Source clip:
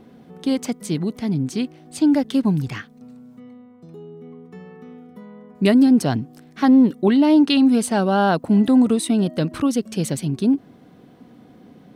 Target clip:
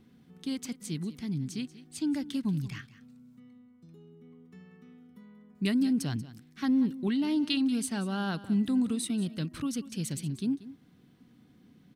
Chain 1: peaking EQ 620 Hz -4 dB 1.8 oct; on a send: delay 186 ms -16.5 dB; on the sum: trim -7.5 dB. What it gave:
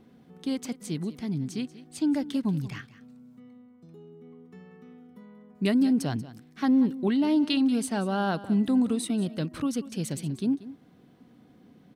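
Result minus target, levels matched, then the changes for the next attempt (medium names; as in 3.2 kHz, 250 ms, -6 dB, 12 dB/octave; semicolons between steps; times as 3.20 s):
500 Hz band +4.5 dB
change: peaking EQ 620 Hz -15 dB 1.8 oct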